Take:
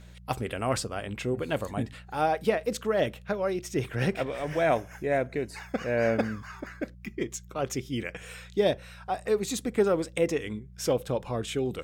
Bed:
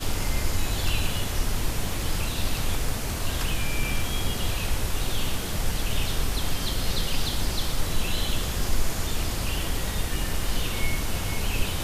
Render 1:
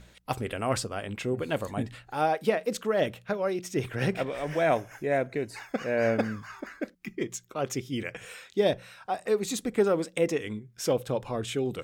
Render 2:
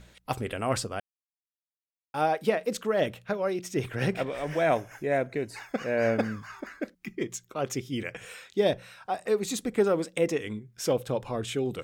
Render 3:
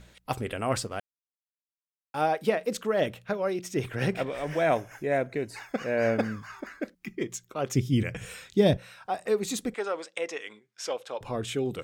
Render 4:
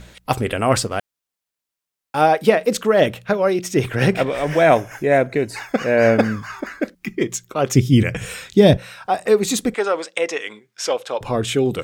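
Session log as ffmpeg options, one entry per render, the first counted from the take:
-af "bandreject=f=60:t=h:w=4,bandreject=f=120:t=h:w=4,bandreject=f=180:t=h:w=4"
-filter_complex "[0:a]asplit=3[a][b][c];[a]atrim=end=1,asetpts=PTS-STARTPTS,afade=t=out:st=0.996:d=0.004:c=hsin[d];[b]atrim=start=1:end=2.14,asetpts=PTS-STARTPTS,volume=0[e];[c]atrim=start=2.14,asetpts=PTS-STARTPTS,afade=t=in:d=0.004:c=hsin[f];[d][e][f]concat=n=3:v=0:a=1"
-filter_complex "[0:a]asettb=1/sr,asplit=3[a][b][c];[a]atrim=end=0.754[d];[b]atrim=start=0.75:end=2.27,asetpts=PTS-STARTPTS,afade=t=in:d=0.004:c=qsin,afade=t=out:st=1.516:d=0.004:c=qsin,aeval=exprs='sgn(val(0))*max(abs(val(0))-0.00188,0)':c=same[e];[c]atrim=start=2.266[f];[d][e]acrossfade=d=0.004:c1=hsin:c2=qsin[g];[g][f]acrossfade=d=0.004:c1=qsin:c2=hsin,asettb=1/sr,asplit=3[h][i][j];[h]atrim=end=7.754[k];[i]atrim=start=7.75:end=8.77,asetpts=PTS-STARTPTS,afade=t=in:d=0.004:c=qsin,afade=t=out:st=1.016:d=0.004:c=qsin,bass=f=250:g=14,treble=f=4k:g=4[l];[j]atrim=start=8.766[m];[k][l]acrossfade=d=0.004:c1=hsin:c2=qsin[n];[n][m]acrossfade=d=0.004:c1=qsin:c2=hsin,asettb=1/sr,asplit=3[o][p][q];[o]atrim=end=9.744[r];[p]atrim=start=9.74:end=11.21,asetpts=PTS-STARTPTS,afade=t=in:d=0.004:c=qsin,afade=t=out:st=1.466:d=0.004:c=qsin,highpass=690,lowpass=7k[s];[q]atrim=start=11.206[t];[r][s]acrossfade=d=0.004:c1=hsin:c2=qsin[u];[u][t]acrossfade=d=0.004:c1=qsin:c2=hsin"
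-af "volume=11dB,alimiter=limit=-1dB:level=0:latency=1"

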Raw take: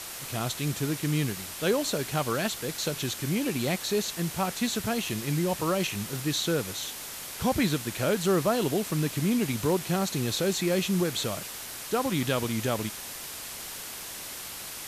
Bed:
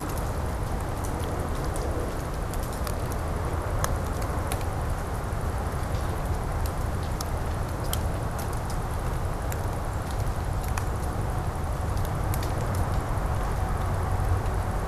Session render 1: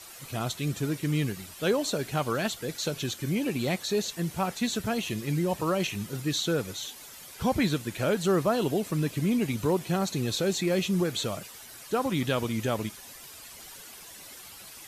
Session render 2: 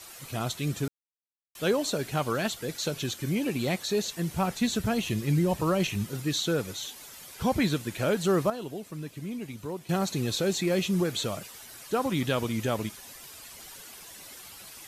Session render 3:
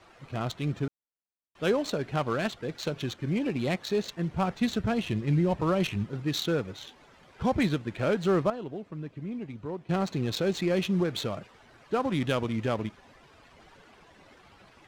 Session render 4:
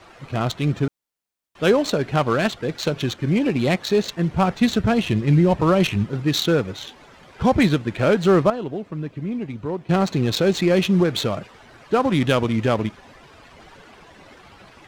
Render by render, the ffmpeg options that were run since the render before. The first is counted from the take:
-af "afftdn=nr=11:nf=-40"
-filter_complex "[0:a]asettb=1/sr,asplit=3[a][b][c];[a]atrim=end=4.324[d];[b]atrim=start=4.32:end=6.05,asetpts=PTS-STARTPTS,afade=t=in:d=0.004:c=qsin,afade=t=out:st=1.726:d=0.004:c=qsin,lowshelf=f=150:g=8.5[e];[c]atrim=start=6.046[f];[d][e]acrossfade=d=0.004:c1=hsin:c2=qsin[g];[g][f]acrossfade=d=0.004:c1=qsin:c2=hsin,asplit=5[h][i][j][k][l];[h]atrim=end=0.88,asetpts=PTS-STARTPTS,afade=t=out:st=0.876:d=0.004:c=hsin[m];[i]atrim=start=0.88:end=1.55,asetpts=PTS-STARTPTS,volume=0[n];[j]atrim=start=1.55:end=8.502,asetpts=PTS-STARTPTS,afade=t=in:d=0.004:c=hsin[o];[k]atrim=start=8.498:end=9.892,asetpts=PTS-STARTPTS,volume=-10dB[p];[l]atrim=start=9.888[q];[m][n][o]concat=n=3:v=0:a=1[r];[r][p]acrossfade=d=0.004:c1=hsin:c2=hsin[s];[s][q]acrossfade=d=0.004:c1=hsin:c2=hsin"
-af "adynamicsmooth=sensitivity=4.5:basefreq=1.7k"
-af "volume=9dB"

